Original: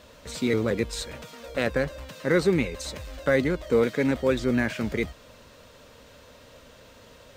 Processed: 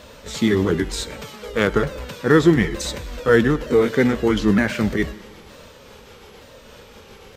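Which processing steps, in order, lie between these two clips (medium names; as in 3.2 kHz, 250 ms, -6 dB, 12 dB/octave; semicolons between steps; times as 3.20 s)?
sawtooth pitch modulation -3.5 st, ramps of 916 ms; plate-style reverb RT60 1.5 s, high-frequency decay 0.8×, DRR 16 dB; trim +8 dB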